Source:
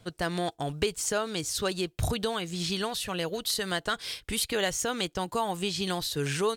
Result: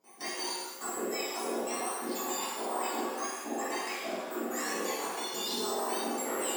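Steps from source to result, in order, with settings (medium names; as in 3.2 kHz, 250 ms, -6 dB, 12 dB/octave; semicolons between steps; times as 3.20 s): spectrum inverted on a logarithmic axis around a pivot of 1.8 kHz; 1.60–2.52 s: phase dispersion highs, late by 43 ms, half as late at 560 Hz; 5.30–5.81 s: comb 4.8 ms, depth 77%; level held to a coarse grid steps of 18 dB; 3.80–4.62 s: Butterworth band-stop 940 Hz, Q 3; pitch-shifted reverb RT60 1.2 s, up +7 st, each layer -8 dB, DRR -7.5 dB; trim -5.5 dB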